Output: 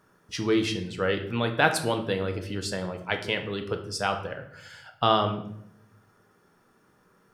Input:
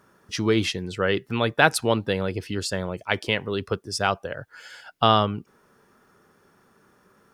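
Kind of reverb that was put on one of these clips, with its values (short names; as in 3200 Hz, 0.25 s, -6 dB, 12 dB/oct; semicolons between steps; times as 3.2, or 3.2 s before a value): shoebox room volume 170 m³, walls mixed, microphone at 0.54 m; gain -4.5 dB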